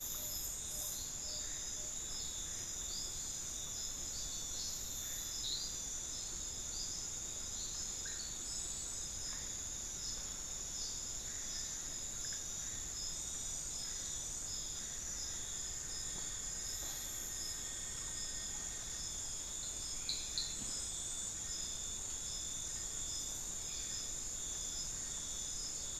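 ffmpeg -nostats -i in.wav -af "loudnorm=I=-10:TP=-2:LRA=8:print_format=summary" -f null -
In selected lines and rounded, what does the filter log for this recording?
Input Integrated:    -40.1 LUFS
Input True Peak:     -22.5 dBTP
Input LRA:             1.0 LU
Input Threshold:     -50.1 LUFS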